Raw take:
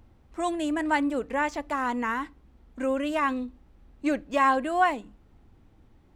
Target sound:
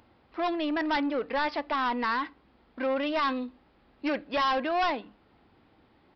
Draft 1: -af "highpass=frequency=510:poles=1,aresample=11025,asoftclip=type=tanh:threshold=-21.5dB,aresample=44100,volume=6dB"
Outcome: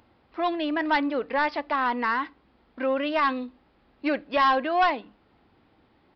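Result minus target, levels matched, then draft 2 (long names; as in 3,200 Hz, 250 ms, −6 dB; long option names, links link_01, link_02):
soft clipping: distortion −6 dB
-af "highpass=frequency=510:poles=1,aresample=11025,asoftclip=type=tanh:threshold=-29.5dB,aresample=44100,volume=6dB"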